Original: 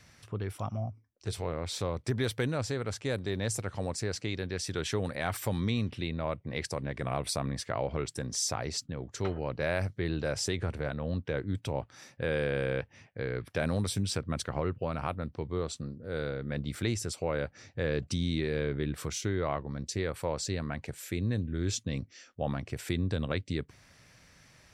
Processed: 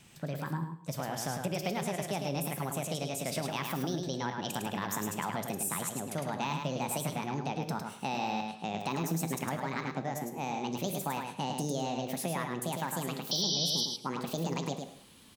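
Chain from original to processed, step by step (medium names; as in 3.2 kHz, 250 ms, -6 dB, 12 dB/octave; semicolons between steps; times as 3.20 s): gliding tape speed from 142% -> 180%; gated-style reverb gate 230 ms falling, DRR 9.5 dB; painted sound noise, 13.31–13.86 s, 3–6 kHz -25 dBFS; compression 2.5:1, threshold -32 dBFS, peak gain reduction 8 dB; on a send: feedback delay 106 ms, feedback 16%, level -5 dB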